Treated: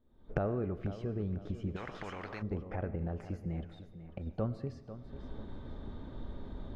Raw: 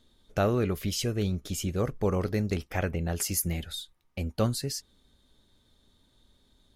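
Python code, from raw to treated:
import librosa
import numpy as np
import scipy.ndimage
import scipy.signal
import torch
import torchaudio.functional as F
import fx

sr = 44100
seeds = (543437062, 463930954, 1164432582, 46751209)

y = fx.recorder_agc(x, sr, target_db=-20.0, rise_db_per_s=58.0, max_gain_db=30)
y = scipy.signal.sosfilt(scipy.signal.butter(2, 1100.0, 'lowpass', fs=sr, output='sos'), y)
y = fx.level_steps(y, sr, step_db=16, at=(3.65, 4.27))
y = fx.echo_feedback(y, sr, ms=495, feedback_pct=34, wet_db=-13.0)
y = fx.rev_freeverb(y, sr, rt60_s=1.2, hf_ratio=0.95, predelay_ms=50, drr_db=14.5)
y = fx.spectral_comp(y, sr, ratio=4.0, at=(1.75, 2.41), fade=0.02)
y = y * librosa.db_to_amplitude(-8.0)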